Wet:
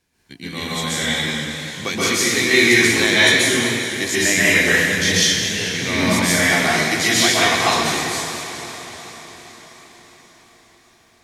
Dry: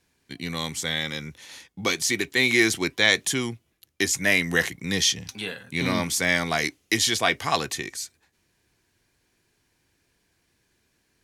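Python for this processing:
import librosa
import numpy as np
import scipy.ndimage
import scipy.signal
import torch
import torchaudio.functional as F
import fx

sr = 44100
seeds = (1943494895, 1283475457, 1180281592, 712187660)

y = fx.highpass(x, sr, hz=110.0, slope=12, at=(6.36, 7.34))
y = fx.echo_diffused(y, sr, ms=480, feedback_pct=56, wet_db=-13.0)
y = fx.rev_plate(y, sr, seeds[0], rt60_s=1.3, hf_ratio=0.9, predelay_ms=115, drr_db=-8.5)
y = fx.echo_warbled(y, sr, ms=201, feedback_pct=65, rate_hz=2.8, cents=160, wet_db=-11.5)
y = y * 10.0 ** (-1.5 / 20.0)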